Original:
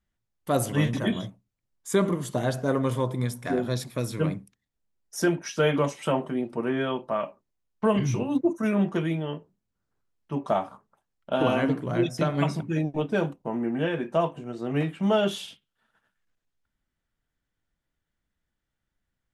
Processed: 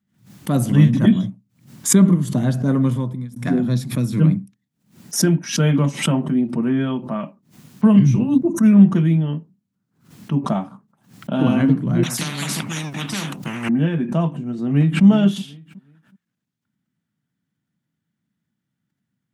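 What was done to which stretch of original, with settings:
2.84–3.36 s: fade out linear
12.03–13.69 s: spectrum-flattening compressor 10:1
14.63–15.04 s: echo throw 370 ms, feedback 25%, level -14 dB
whole clip: high-pass 130 Hz 24 dB/octave; resonant low shelf 310 Hz +12 dB, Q 1.5; swell ahead of each attack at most 130 dB/s

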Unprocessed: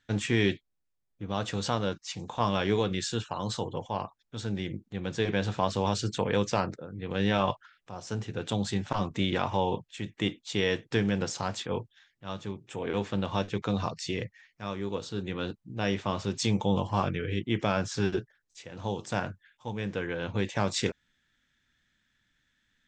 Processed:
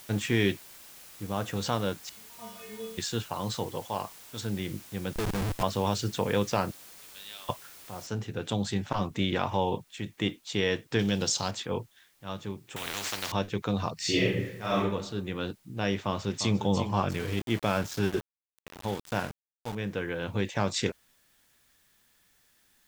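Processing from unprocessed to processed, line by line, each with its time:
0.53–1.56 s: peaking EQ 4.3 kHz -10 dB
2.09–2.98 s: inharmonic resonator 220 Hz, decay 0.67 s, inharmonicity 0.008
3.66–4.41 s: tone controls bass -4 dB, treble +7 dB
5.13–5.63 s: Schmitt trigger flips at -30 dBFS
6.71–7.49 s: band-pass filter 4.3 kHz, Q 4.1
8.07 s: noise floor step -50 dB -67 dB
10.99–11.51 s: resonant high shelf 2.7 kHz +8 dB, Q 1.5
12.76–13.32 s: spectrum-flattening compressor 10:1
13.96–14.78 s: reverb throw, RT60 0.82 s, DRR -9 dB
15.95–16.59 s: echo throw 350 ms, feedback 30%, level -9.5 dB
17.10–19.75 s: small samples zeroed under -36 dBFS

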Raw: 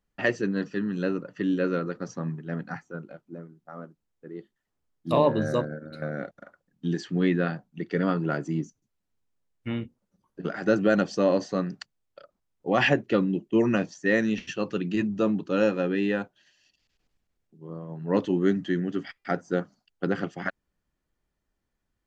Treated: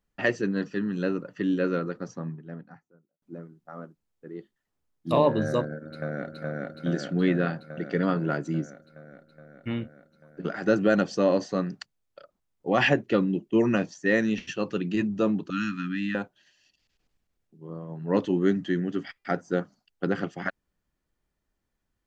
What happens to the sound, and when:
1.71–3.22 s: studio fade out
5.78–6.40 s: echo throw 420 ms, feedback 75%, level -0.5 dB
15.50–16.15 s: elliptic band-stop 270–1200 Hz, stop band 50 dB

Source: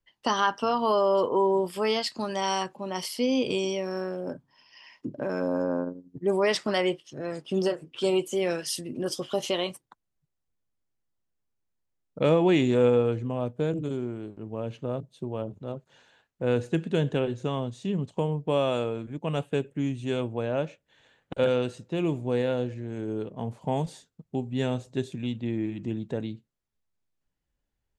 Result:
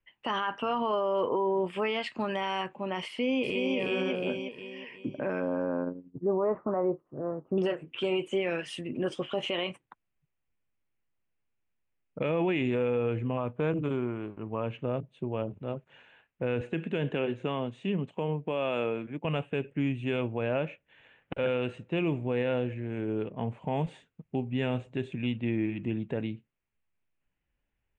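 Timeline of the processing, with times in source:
3.07–3.76 s: echo throw 360 ms, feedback 40%, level -1 dB
6.10–7.58 s: elliptic low-pass 1.2 kHz, stop band 70 dB
13.37–14.71 s: peaking EQ 1.1 kHz +9 dB 0.71 oct
16.61–19.25 s: high-pass 160 Hz
whole clip: steep low-pass 9.2 kHz; resonant high shelf 3.6 kHz -12 dB, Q 3; peak limiter -20 dBFS

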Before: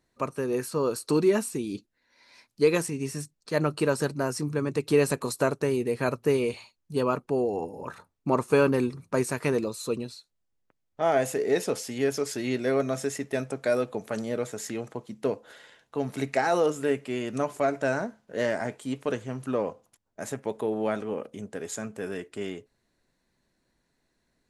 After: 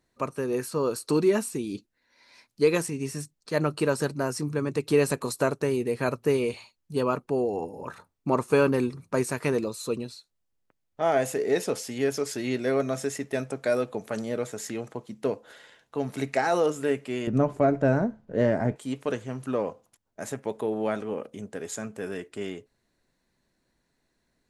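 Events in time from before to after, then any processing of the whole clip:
17.27–18.76 s: tilt EQ -4 dB/octave

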